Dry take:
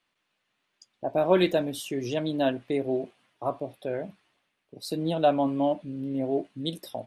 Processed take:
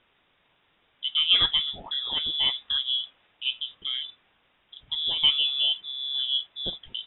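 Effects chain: requantised 10-bit, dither triangular; inverted band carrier 3700 Hz

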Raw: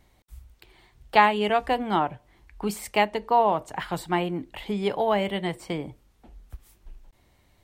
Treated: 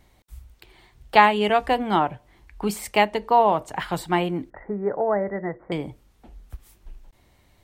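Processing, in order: 4.5–5.72 rippled Chebyshev low-pass 2000 Hz, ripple 6 dB; gain +3 dB

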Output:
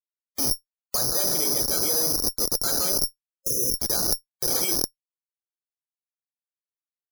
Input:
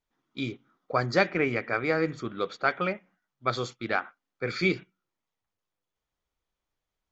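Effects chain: tilt +3 dB/oct; in parallel at -1 dB: limiter -17.5 dBFS, peak gain reduction 10.5 dB; on the sum: reverb RT60 1.4 s, pre-delay 27 ms, DRR 6 dB; Schmitt trigger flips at -24.5 dBFS; bell 500 Hz +9.5 dB 2.7 oct; loudest bins only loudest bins 64; reverse; compressor 12:1, threshold -29 dBFS, peak gain reduction 11.5 dB; reverse; careless resampling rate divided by 8×, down none, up zero stuff; spectral gain 3.37–3.77, 550–5200 Hz -28 dB; gain -1 dB

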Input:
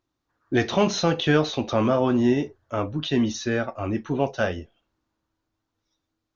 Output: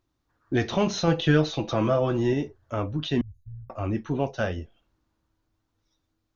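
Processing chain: 1.07–2.33 comb 6.1 ms, depth 63%; 3.21–3.7 inverse Chebyshev band-stop 280–6100 Hz, stop band 60 dB; in parallel at +0.5 dB: compressor, threshold -36 dBFS, peak gain reduction 22 dB; on the sum: low shelf 120 Hz +9 dB; gain -5.5 dB

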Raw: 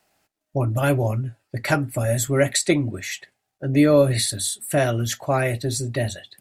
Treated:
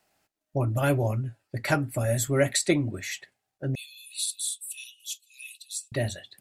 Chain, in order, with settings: 3.75–5.92 rippled Chebyshev high-pass 2500 Hz, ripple 6 dB; gain -4 dB

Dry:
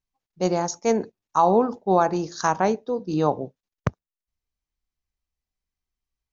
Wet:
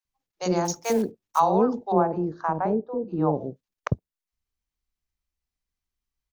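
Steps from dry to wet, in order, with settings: 0.65–1.4 block floating point 5-bit; 1.92–3.35 LPF 1000 Hz 12 dB/oct; bands offset in time highs, lows 50 ms, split 580 Hz

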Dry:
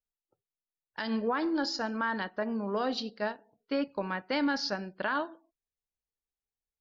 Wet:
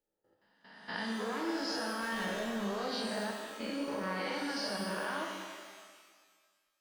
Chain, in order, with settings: spectral swells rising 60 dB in 0.80 s; in parallel at -0.5 dB: compressor, threshold -37 dBFS, peak gain reduction 13.5 dB; 2.02–2.64 on the sum: power-law curve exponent 0.5; level quantiser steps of 17 dB; shimmer reverb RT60 1.7 s, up +12 st, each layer -8 dB, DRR 0 dB; gain -5.5 dB

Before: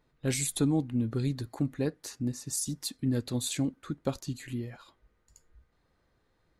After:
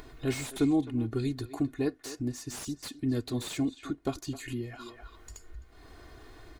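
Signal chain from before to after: comb 2.8 ms, depth 73%; speakerphone echo 0.26 s, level -14 dB; upward compressor, threshold -31 dBFS; slew limiter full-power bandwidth 73 Hz; gain -1 dB

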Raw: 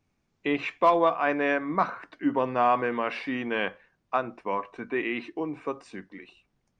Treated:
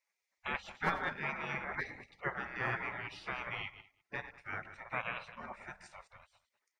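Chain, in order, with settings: reverse delay 0.103 s, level -12 dB; resonant high shelf 2100 Hz -10 dB, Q 3; spectral gate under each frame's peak -25 dB weak; on a send: echo 0.202 s -21.5 dB; on the sum: gain +8 dB

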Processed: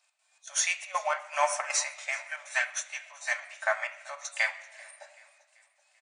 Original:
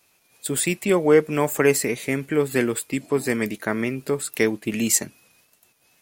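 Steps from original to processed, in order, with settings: nonlinear frequency compression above 3400 Hz 1.5:1; spectral repair 4.68–5.01, 970–8400 Hz; brick-wall FIR high-pass 560 Hz; step gate "x.xx.xxx" 159 bpm -12 dB; feedback echo 0.386 s, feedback 49%, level -17.5 dB; on a send at -1.5 dB: reverb RT60 0.90 s, pre-delay 3 ms; on the sum: upward expander 1.5:1, over -37 dBFS

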